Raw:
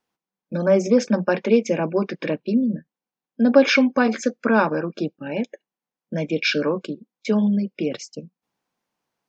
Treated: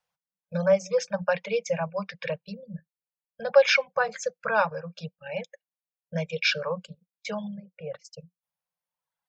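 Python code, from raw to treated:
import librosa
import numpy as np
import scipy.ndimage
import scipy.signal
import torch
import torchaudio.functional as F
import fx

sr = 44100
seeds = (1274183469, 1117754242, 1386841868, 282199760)

y = fx.notch_comb(x, sr, f0_hz=230.0, at=(0.72, 1.22))
y = fx.lowpass(y, sr, hz=1400.0, slope=12, at=(7.53, 8.04), fade=0.02)
y = fx.dereverb_blind(y, sr, rt60_s=1.9)
y = scipy.signal.sosfilt(scipy.signal.ellip(3, 1.0, 40, [180.0, 500.0], 'bandstop', fs=sr, output='sos'), y)
y = y * 10.0 ** (-2.0 / 20.0)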